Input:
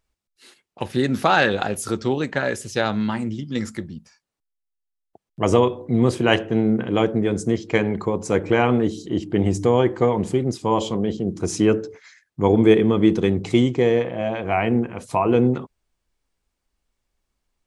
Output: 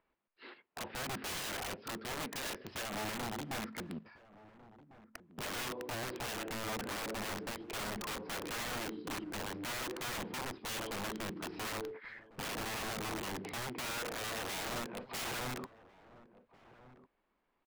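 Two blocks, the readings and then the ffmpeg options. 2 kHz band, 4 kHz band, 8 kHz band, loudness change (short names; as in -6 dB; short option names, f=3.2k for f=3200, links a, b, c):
-13.0 dB, -9.0 dB, -6.5 dB, -19.0 dB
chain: -filter_complex "[0:a]aresample=11025,acrusher=bits=5:mode=log:mix=0:aa=0.000001,aresample=44100,equalizer=f=1k:t=o:w=0.21:g=3.5,alimiter=limit=-8.5dB:level=0:latency=1:release=66,acompressor=threshold=-37dB:ratio=3,aeval=exprs='clip(val(0),-1,0.0119)':c=same,acrossover=split=190 2600:gain=0.126 1 0.0794[a][b][c];[a][b][c]amix=inputs=3:normalize=0,aeval=exprs='(mod(79.4*val(0)+1,2)-1)/79.4':c=same,asplit=2[d][e];[e]adelay=1399,volume=-17dB,highshelf=f=4k:g=-31.5[f];[d][f]amix=inputs=2:normalize=0,volume=3.5dB"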